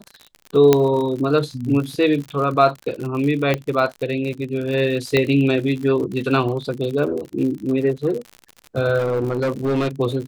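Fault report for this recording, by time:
crackle 63/s -27 dBFS
0.73 pop -1 dBFS
3.54 pop -7 dBFS
5.17 pop -6 dBFS
8.98–9.88 clipped -16.5 dBFS

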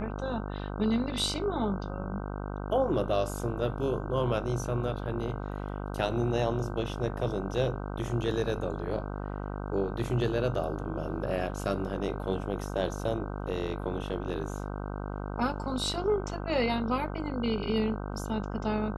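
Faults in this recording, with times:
buzz 50 Hz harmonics 31 -36 dBFS

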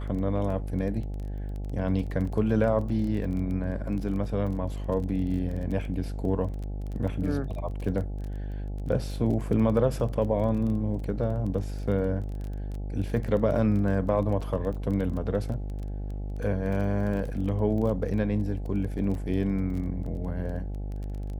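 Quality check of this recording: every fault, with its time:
buzz 50 Hz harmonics 17 -33 dBFS
crackle 20/s -34 dBFS

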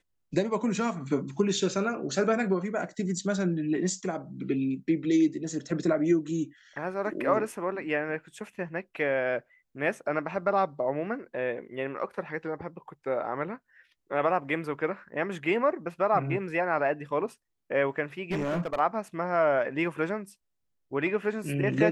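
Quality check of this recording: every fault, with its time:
18.31–18.8 clipped -25.5 dBFS

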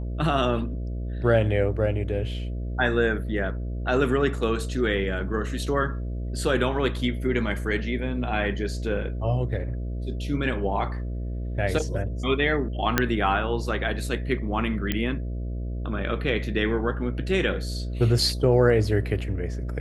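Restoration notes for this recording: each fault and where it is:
buzz 60 Hz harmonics 11 -30 dBFS
12.98 pop -4 dBFS
14.92 pop -11 dBFS

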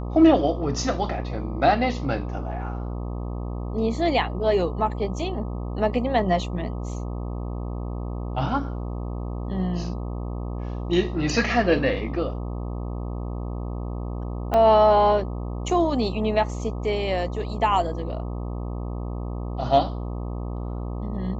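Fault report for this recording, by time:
buzz 60 Hz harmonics 21 -30 dBFS
14.54 gap 3.8 ms

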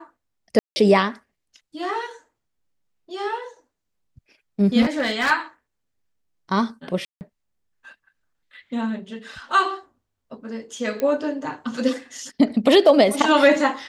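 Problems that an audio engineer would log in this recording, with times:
0.59–0.76 gap 0.17 s
4.81–5.32 clipped -16.5 dBFS
7.05–7.21 gap 0.159 s
11 pop -13 dBFS

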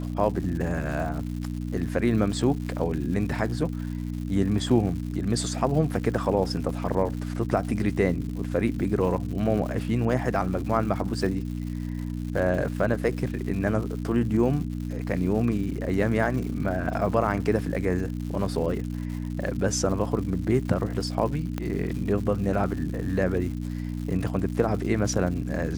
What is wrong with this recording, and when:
crackle 220/s -35 dBFS
hum 60 Hz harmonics 5 -31 dBFS
21.58 pop -16 dBFS

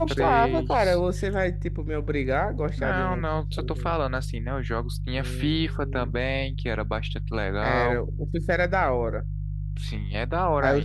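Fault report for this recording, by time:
hum 50 Hz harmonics 3 -30 dBFS

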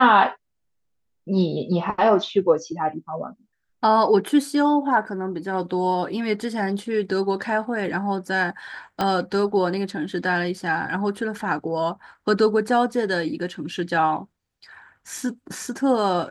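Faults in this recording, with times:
9.01 pop -10 dBFS

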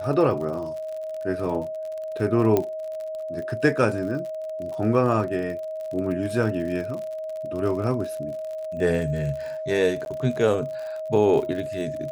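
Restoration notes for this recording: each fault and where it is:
crackle 54/s -32 dBFS
tone 630 Hz -29 dBFS
2.57 pop -9 dBFS
10.05–10.06 gap

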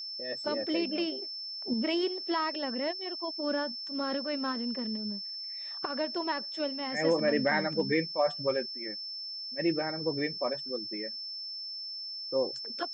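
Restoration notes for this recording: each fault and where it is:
tone 5300 Hz -37 dBFS

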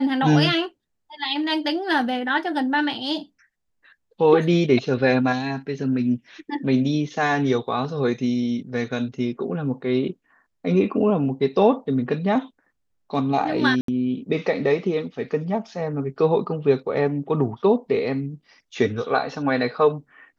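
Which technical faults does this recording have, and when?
13.81–13.88 gap 73 ms

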